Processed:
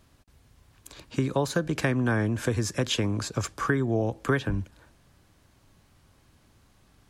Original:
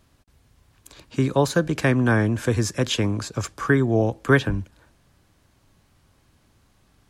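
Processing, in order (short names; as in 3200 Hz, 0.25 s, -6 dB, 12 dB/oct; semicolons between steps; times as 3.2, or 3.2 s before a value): compressor 3:1, threshold -23 dBFS, peak gain reduction 9.5 dB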